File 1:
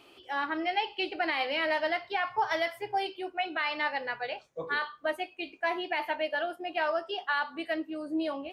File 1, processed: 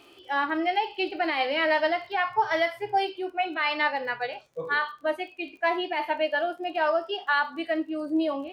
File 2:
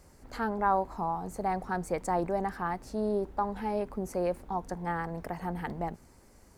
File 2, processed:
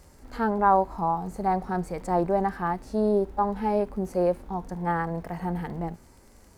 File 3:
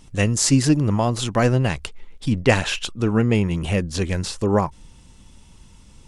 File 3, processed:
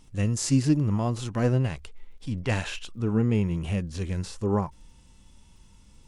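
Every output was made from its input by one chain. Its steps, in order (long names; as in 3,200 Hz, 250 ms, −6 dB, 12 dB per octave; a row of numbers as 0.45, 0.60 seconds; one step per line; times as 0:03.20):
harmonic and percussive parts rebalanced percussive −11 dB
surface crackle 25 per second −52 dBFS
loudness normalisation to −27 LKFS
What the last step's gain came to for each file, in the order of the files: +6.0, +7.0, −4.0 decibels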